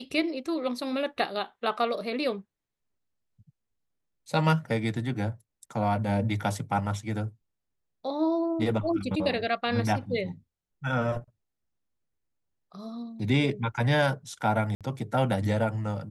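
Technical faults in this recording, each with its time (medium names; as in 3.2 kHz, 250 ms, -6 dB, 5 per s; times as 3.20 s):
14.75–14.81 s: dropout 57 ms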